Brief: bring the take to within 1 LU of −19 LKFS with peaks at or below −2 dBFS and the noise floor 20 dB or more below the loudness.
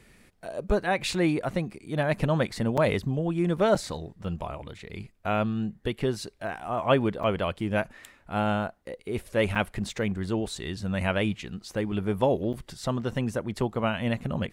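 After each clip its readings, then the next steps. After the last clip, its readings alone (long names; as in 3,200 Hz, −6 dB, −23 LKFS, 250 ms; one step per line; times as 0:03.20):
number of dropouts 5; longest dropout 6.0 ms; integrated loudness −28.5 LKFS; sample peak −9.0 dBFS; target loudness −19.0 LKFS
→ repair the gap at 0:02.77/0:03.75/0:07.23/0:09.55/0:12.53, 6 ms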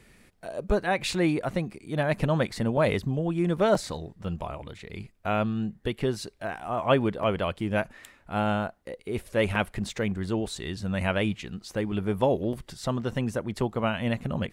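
number of dropouts 0; integrated loudness −28.5 LKFS; sample peak −9.0 dBFS; target loudness −19.0 LKFS
→ level +9.5 dB
brickwall limiter −2 dBFS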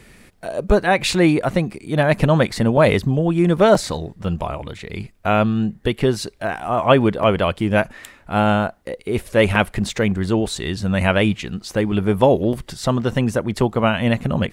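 integrated loudness −19.0 LKFS; sample peak −2.0 dBFS; background noise floor −51 dBFS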